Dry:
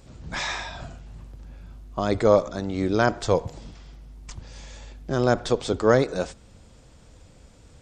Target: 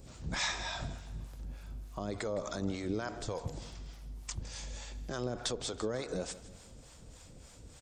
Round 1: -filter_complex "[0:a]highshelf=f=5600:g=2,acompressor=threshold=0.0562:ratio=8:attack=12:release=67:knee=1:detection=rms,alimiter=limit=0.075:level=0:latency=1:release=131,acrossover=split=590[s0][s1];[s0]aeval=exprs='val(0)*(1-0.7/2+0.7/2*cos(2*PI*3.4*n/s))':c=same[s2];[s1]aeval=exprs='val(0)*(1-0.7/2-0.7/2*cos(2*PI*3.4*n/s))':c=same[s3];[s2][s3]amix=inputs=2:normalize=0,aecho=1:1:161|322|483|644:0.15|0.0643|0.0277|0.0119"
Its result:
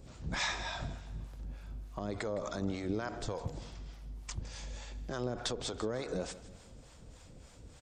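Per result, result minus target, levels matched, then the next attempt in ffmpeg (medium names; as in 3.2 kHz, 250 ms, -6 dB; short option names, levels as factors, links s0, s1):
compression: peak gain reduction +12.5 dB; 8 kHz band -3.0 dB
-filter_complex "[0:a]highshelf=f=5600:g=2,alimiter=limit=0.075:level=0:latency=1:release=131,acrossover=split=590[s0][s1];[s0]aeval=exprs='val(0)*(1-0.7/2+0.7/2*cos(2*PI*3.4*n/s))':c=same[s2];[s1]aeval=exprs='val(0)*(1-0.7/2-0.7/2*cos(2*PI*3.4*n/s))':c=same[s3];[s2][s3]amix=inputs=2:normalize=0,aecho=1:1:161|322|483|644:0.15|0.0643|0.0277|0.0119"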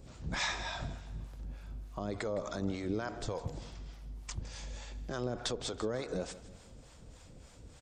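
8 kHz band -3.0 dB
-filter_complex "[0:a]highshelf=f=5600:g=10,alimiter=limit=0.075:level=0:latency=1:release=131,acrossover=split=590[s0][s1];[s0]aeval=exprs='val(0)*(1-0.7/2+0.7/2*cos(2*PI*3.4*n/s))':c=same[s2];[s1]aeval=exprs='val(0)*(1-0.7/2-0.7/2*cos(2*PI*3.4*n/s))':c=same[s3];[s2][s3]amix=inputs=2:normalize=0,aecho=1:1:161|322|483|644:0.15|0.0643|0.0277|0.0119"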